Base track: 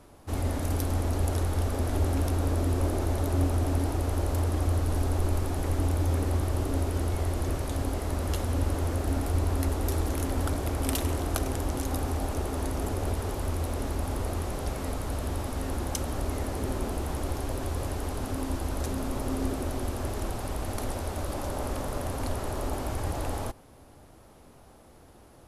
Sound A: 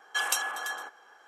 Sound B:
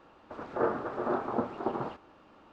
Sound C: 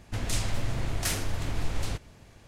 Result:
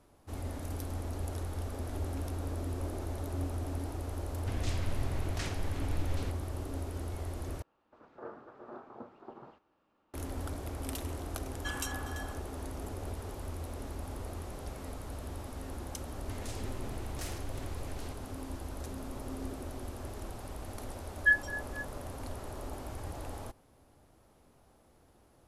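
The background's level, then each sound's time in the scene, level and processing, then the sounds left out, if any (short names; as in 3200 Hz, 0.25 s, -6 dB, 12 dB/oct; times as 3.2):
base track -10 dB
4.34 add C -6.5 dB + air absorption 91 m
7.62 replace with B -17 dB
11.5 add A -10.5 dB
16.16 add C -7.5 dB + compressor 3:1, threshold -32 dBFS
21.11 add A -6.5 dB + spectral expander 4:1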